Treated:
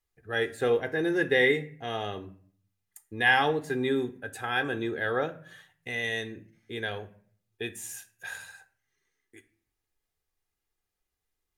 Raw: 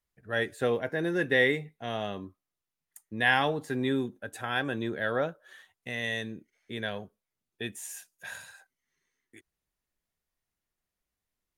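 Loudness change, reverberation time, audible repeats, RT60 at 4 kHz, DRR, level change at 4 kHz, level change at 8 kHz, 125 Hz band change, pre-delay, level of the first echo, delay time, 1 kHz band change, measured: +1.5 dB, 0.50 s, no echo, 0.35 s, 11.0 dB, +1.0 dB, +1.0 dB, -1.0 dB, 5 ms, no echo, no echo, +2.0 dB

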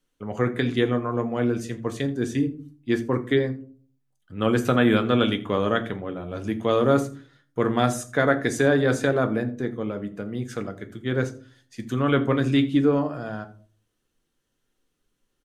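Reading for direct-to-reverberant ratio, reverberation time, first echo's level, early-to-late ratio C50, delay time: 7.0 dB, 0.40 s, -20.5 dB, 15.0 dB, 83 ms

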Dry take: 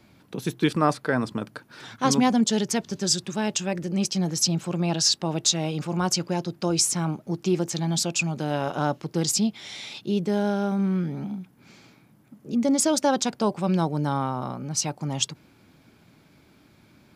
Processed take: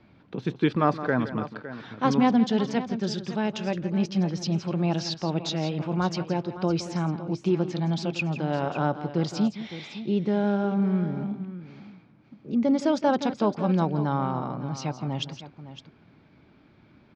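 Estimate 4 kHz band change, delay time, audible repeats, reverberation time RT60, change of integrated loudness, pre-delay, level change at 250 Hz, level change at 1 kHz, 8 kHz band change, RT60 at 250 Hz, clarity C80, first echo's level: -8.5 dB, 167 ms, 2, no reverb, -2.0 dB, no reverb, 0.0 dB, -0.5 dB, -19.0 dB, no reverb, no reverb, -13.0 dB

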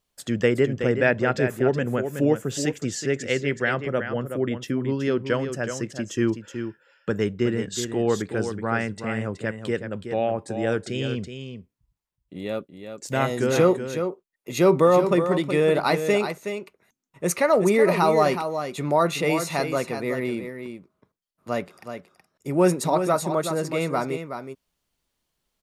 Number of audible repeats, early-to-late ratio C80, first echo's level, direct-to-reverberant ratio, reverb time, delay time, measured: 1, no reverb, -8.5 dB, no reverb, no reverb, 372 ms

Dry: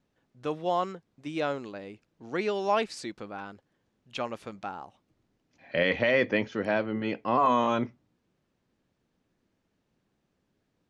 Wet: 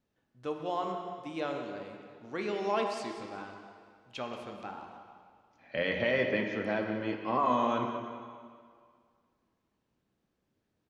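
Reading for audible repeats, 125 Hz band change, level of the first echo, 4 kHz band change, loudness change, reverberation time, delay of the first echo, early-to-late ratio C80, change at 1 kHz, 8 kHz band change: 1, -4.0 dB, -12.0 dB, -4.0 dB, -4.5 dB, 2.0 s, 183 ms, 5.0 dB, -4.0 dB, no reading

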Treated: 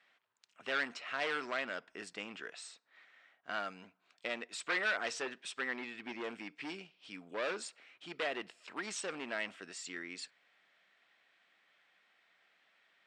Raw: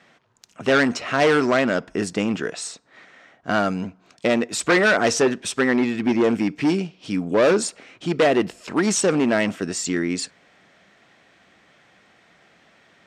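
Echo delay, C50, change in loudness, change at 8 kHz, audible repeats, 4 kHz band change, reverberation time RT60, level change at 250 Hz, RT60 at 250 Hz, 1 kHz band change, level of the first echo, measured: no echo, no reverb, -18.5 dB, -19.5 dB, no echo, -14.0 dB, no reverb, -27.0 dB, no reverb, -17.0 dB, no echo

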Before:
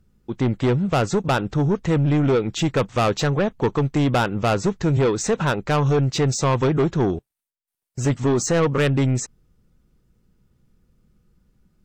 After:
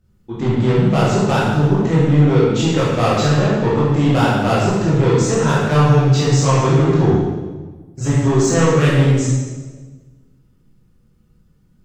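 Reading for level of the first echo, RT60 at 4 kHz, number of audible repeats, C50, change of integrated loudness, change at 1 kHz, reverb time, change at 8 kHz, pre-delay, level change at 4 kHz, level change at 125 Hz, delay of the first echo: no echo, 1.1 s, no echo, -1.5 dB, +5.5 dB, +5.0 dB, 1.4 s, +4.0 dB, 14 ms, +4.5 dB, +7.5 dB, no echo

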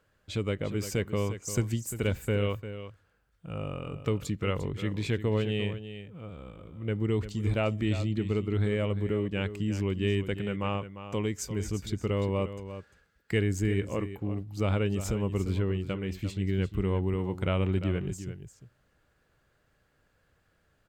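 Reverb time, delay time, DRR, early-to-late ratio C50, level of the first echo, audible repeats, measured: no reverb, 349 ms, no reverb, no reverb, -11.5 dB, 1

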